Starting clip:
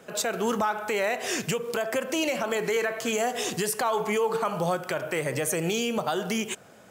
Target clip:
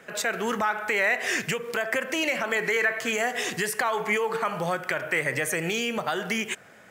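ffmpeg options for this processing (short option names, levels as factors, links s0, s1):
-af "equalizer=f=1900:w=1.6:g=12,volume=0.75"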